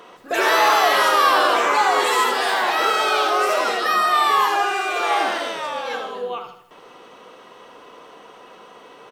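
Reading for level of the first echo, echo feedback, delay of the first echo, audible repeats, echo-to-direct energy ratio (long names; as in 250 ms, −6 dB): −9.0 dB, 46%, 79 ms, 4, −8.0 dB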